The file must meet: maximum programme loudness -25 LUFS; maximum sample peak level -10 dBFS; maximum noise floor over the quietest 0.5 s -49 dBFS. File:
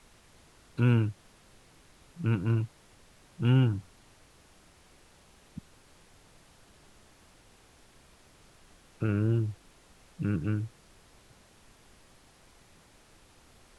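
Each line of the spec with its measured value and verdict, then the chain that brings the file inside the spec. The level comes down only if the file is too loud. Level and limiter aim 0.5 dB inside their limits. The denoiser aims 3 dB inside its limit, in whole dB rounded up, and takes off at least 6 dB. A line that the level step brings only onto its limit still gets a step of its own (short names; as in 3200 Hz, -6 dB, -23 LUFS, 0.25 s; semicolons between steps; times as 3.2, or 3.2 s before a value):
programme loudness -29.5 LUFS: OK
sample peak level -13.5 dBFS: OK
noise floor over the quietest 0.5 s -59 dBFS: OK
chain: none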